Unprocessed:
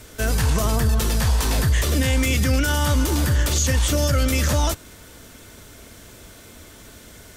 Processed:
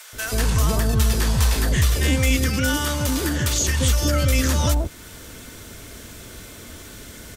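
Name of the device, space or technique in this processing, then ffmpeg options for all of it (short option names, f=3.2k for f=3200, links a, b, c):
parallel compression: -filter_complex "[0:a]asettb=1/sr,asplit=3[a][b][c];[a]atrim=end=2.364[d];[b]atrim=start=2.36:end=3.55,asetpts=PTS-STARTPTS,afade=t=in:d=0.004:c=qsin,afade=t=out:st=1.186:d=0.004:c=qsin,highpass=f=130:p=1[e];[c]atrim=start=3.546[f];[d][e]acrossfade=d=0.004:c1=hsin:c2=qsin[g];[g][f]acrossfade=d=0.004:c1=qsin:c2=hsin,asplit=2[h][i];[i]acompressor=threshold=-39dB:ratio=6,volume=-2dB[j];[h][j]amix=inputs=2:normalize=0,acrossover=split=750[k][l];[k]adelay=130[m];[m][l]amix=inputs=2:normalize=0"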